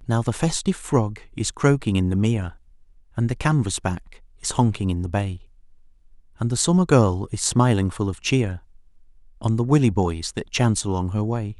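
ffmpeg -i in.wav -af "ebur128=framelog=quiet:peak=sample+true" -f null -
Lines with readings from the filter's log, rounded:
Integrated loudness:
  I:         -22.2 LUFS
  Threshold: -33.0 LUFS
Loudness range:
  LRA:         3.5 LU
  Threshold: -43.1 LUFS
  LRA low:   -25.2 LUFS
  LRA high:  -21.6 LUFS
Sample peak:
  Peak:       -1.2 dBFS
True peak:
  Peak:       -1.2 dBFS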